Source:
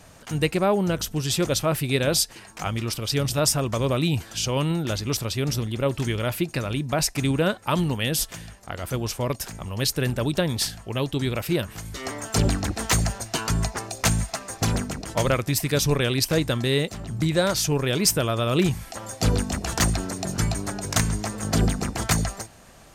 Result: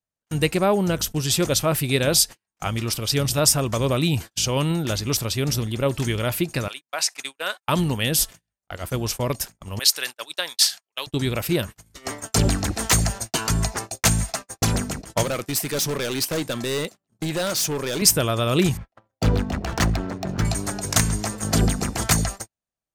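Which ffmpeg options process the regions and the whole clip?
-filter_complex "[0:a]asettb=1/sr,asplit=3[s0][s1][s2];[s0]atrim=end=6.684[s3];[s1]atrim=start=6.68:end=7.68,asetpts=PTS-STARTPTS,afade=t=in:d=0.004:c=qsin,afade=t=out:st=0.996:d=0.004:c=qsin,acrossover=split=8200[s4][s5];[s5]acompressor=threshold=0.00708:ratio=4:attack=1:release=60[s6];[s4][s6]amix=inputs=2:normalize=0,highpass=950[s7];[s2]atrim=start=7.676[s8];[s3][s7]acrossfade=d=0.004:c1=hsin:c2=qsin[s9];[s9][s8]acrossfade=d=0.004:c1=qsin:c2=hsin,asettb=1/sr,asplit=3[s10][s11][s12];[s10]atrim=end=9.794[s13];[s11]atrim=start=9.79:end=11.07,asetpts=PTS-STARTPTS,afade=t=in:d=0.004:c=qsin,afade=t=out:st=1.276:d=0.004:c=qsin,highpass=950,adynamicequalizer=threshold=0.0141:dfrequency=4700:dqfactor=1:tfrequency=4700:tqfactor=1:attack=5:release=100:ratio=0.375:range=3:mode=boostabove:tftype=bell[s14];[s12]atrim=start=11.066[s15];[s13][s14]acrossfade=d=0.004:c1=hsin:c2=qsin[s16];[s16][s15]acrossfade=d=0.004:c1=qsin:c2=hsin,asettb=1/sr,asplit=3[s17][s18][s19];[s17]atrim=end=15.234[s20];[s18]atrim=start=15.23:end=18.02,asetpts=PTS-STARTPTS,afade=t=in:d=0.004:c=qsin,afade=t=out:st=2.786:d=0.004:c=qsin,highpass=190,asoftclip=type=hard:threshold=0.0668[s21];[s19]atrim=start=18.016[s22];[s20][s21]acrossfade=d=0.004:c1=hsin:c2=qsin[s23];[s23][s22]acrossfade=d=0.004:c1=qsin:c2=hsin,asettb=1/sr,asplit=3[s24][s25][s26];[s24]atrim=end=18.774[s27];[s25]atrim=start=18.77:end=20.45,asetpts=PTS-STARTPTS,afade=t=in:d=0.004:c=qsin,afade=t=out:st=1.676:d=0.004:c=qsin,aemphasis=mode=reproduction:type=cd,adynamicsmooth=sensitivity=5.5:basefreq=1700[s28];[s26]atrim=start=20.446[s29];[s27][s28]acrossfade=d=0.004:c1=hsin:c2=qsin[s30];[s30][s29]acrossfade=d=0.004:c1=qsin:c2=hsin,agate=range=0.00501:threshold=0.0251:ratio=16:detection=peak,highshelf=f=5500:g=5,volume=1.19"

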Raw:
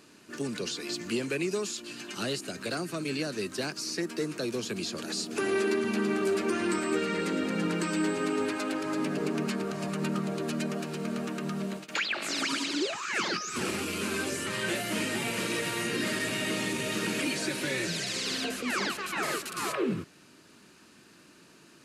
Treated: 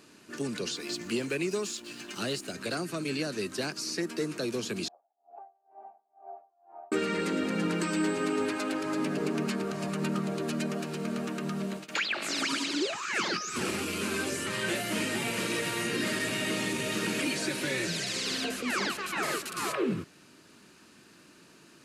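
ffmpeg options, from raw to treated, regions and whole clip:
-filter_complex "[0:a]asettb=1/sr,asplit=3[s0][s1][s2];[s0]atrim=end=0.764[s3];[s1]atrim=start=0.76:end=2.54,asetpts=PTS-STARTPTS,afade=t=in:d=0.004:c=qsin,afade=t=out:st=1.776:d=0.004:c=qsin,highpass=54,aeval=exprs='sgn(val(0))*max(abs(val(0))-0.00178,0)':c=same[s4];[s2]atrim=start=2.536[s5];[s3][s4]acrossfade=d=0.004:c1=hsin:c2=qsin[s6];[s6][s5]acrossfade=d=0.004:c1=qsin:c2=hsin,asettb=1/sr,asplit=3[s7][s8][s9];[s7]atrim=end=4.884[s10];[s8]atrim=start=4.88:end=6.92,asetpts=PTS-STARTPTS,afade=t=in:d=0.004:c=qsin,afade=t=out:st=2.036:d=0.004:c=qsin,acontrast=86,asuperpass=centerf=750:order=4:qfactor=6.1,aeval=exprs='val(0)*pow(10,-33*(0.5-0.5*cos(2*PI*2.1*n/s))/20)':c=same[s11];[s9]atrim=start=6.916[s12];[s10][s11]acrossfade=d=0.004:c1=hsin:c2=qsin[s13];[s13][s12]acrossfade=d=0.004:c1=qsin:c2=hsin"

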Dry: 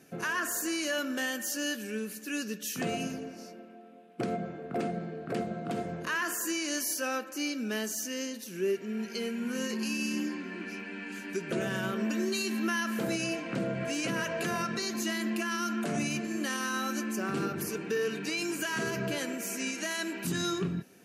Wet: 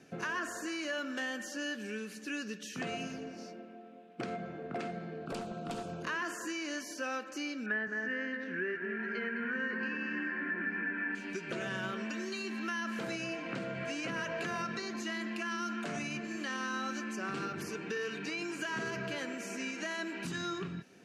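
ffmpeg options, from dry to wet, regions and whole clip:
-filter_complex "[0:a]asettb=1/sr,asplit=3[s0][s1][s2];[s0]atrim=end=5.264[s3];[s1]atrim=start=5.26:end=6.03,asetpts=PTS-STARTPTS,afade=t=in:d=0.004:c=qsin,afade=t=out:st=0.766:d=0.004:c=qsin,asuperstop=centerf=1900:order=8:qfactor=2.5,aemphasis=mode=production:type=50fm,aeval=exprs='clip(val(0),-1,0.0251)':c=same[s4];[s2]atrim=start=6.026[s5];[s3][s4]acrossfade=d=0.004:c1=hsin:c2=qsin[s6];[s6][s5]acrossfade=d=0.004:c1=qsin:c2=hsin,asettb=1/sr,asplit=3[s7][s8][s9];[s7]atrim=end=7.664[s10];[s8]atrim=start=7.66:end=11.15,asetpts=PTS-STARTPTS,afade=t=in:d=0.004:c=qsin,afade=t=out:st=3.486:d=0.004:c=qsin,lowpass=f=1700:t=q:w=6.8,asplit=2[s11][s12];[s12]adelay=211,lowpass=f=1300:p=1,volume=0.562,asplit=2[s13][s14];[s14]adelay=211,lowpass=f=1300:p=1,volume=0.42,asplit=2[s15][s16];[s16]adelay=211,lowpass=f=1300:p=1,volume=0.42,asplit=2[s17][s18];[s18]adelay=211,lowpass=f=1300:p=1,volume=0.42,asplit=2[s19][s20];[s20]adelay=211,lowpass=f=1300:p=1,volume=0.42[s21];[s11][s13][s15][s17][s19][s21]amix=inputs=6:normalize=0,atrim=end_sample=153909[s22];[s9]atrim=start=11.146[s23];[s10][s22]acrossfade=d=0.004:c1=hsin:c2=qsin[s24];[s24][s23]acrossfade=d=0.004:c1=qsin:c2=hsin,asettb=1/sr,asplit=3[s25][s26][s27];[s25]atrim=end=16.394[s28];[s26]atrim=start=16.39:end=17.04,asetpts=PTS-STARTPTS,afade=t=in:d=0.004:c=qsin,afade=t=out:st=0.646:d=0.004:c=qsin,acrossover=split=8700[s29][s30];[s30]acompressor=threshold=0.00112:ratio=4:attack=1:release=60[s31];[s29][s31]amix=inputs=2:normalize=0,acrusher=bits=7:mix=0:aa=0.5[s32];[s27]atrim=start=17.036[s33];[s28][s32]acrossfade=d=0.004:c1=hsin:c2=qsin[s34];[s34][s33]acrossfade=d=0.004:c1=qsin:c2=hsin,lowpass=5900,acrossover=split=890|2200[s35][s36][s37];[s35]acompressor=threshold=0.0112:ratio=4[s38];[s36]acompressor=threshold=0.0126:ratio=4[s39];[s37]acompressor=threshold=0.00501:ratio=4[s40];[s38][s39][s40]amix=inputs=3:normalize=0"

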